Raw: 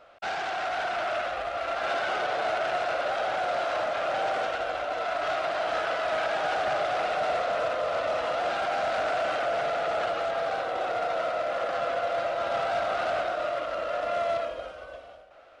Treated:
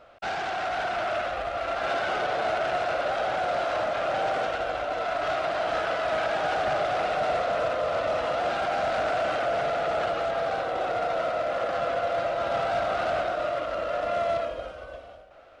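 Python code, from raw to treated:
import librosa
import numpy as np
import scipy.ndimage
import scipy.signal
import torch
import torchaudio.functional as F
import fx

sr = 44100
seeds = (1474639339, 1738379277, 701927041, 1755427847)

y = fx.low_shelf(x, sr, hz=300.0, db=8.0)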